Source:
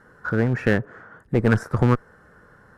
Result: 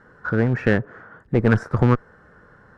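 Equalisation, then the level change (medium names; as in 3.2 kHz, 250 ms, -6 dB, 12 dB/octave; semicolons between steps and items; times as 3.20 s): distance through air 79 m; +1.5 dB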